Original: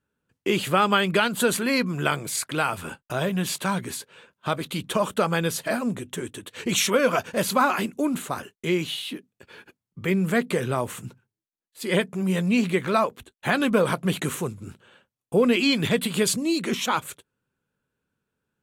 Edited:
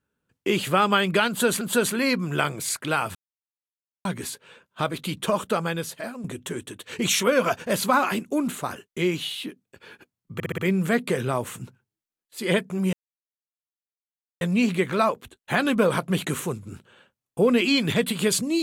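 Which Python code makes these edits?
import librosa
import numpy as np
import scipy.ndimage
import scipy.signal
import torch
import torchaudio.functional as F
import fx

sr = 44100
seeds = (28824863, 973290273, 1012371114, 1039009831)

y = fx.edit(x, sr, fx.repeat(start_s=1.28, length_s=0.33, count=2),
    fx.silence(start_s=2.82, length_s=0.9),
    fx.fade_out_to(start_s=4.97, length_s=0.94, floor_db=-12.0),
    fx.stutter(start_s=10.01, slice_s=0.06, count=5),
    fx.insert_silence(at_s=12.36, length_s=1.48), tone=tone)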